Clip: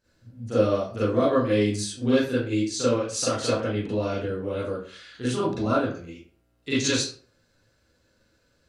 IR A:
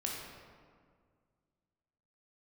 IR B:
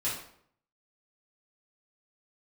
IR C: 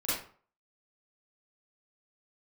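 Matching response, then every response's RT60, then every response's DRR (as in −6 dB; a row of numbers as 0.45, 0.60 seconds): C; 1.9, 0.65, 0.45 seconds; −2.5, −9.5, −12.0 decibels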